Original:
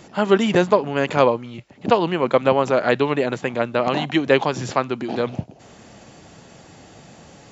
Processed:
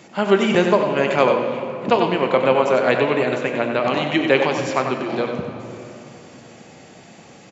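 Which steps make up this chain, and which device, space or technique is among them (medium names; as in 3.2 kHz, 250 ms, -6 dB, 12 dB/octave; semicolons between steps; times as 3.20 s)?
PA in a hall (high-pass 130 Hz 12 dB/octave; peaking EQ 2.3 kHz +5 dB 0.37 oct; delay 94 ms -7 dB; reverberation RT60 3.2 s, pre-delay 4 ms, DRR 5.5 dB); trim -1 dB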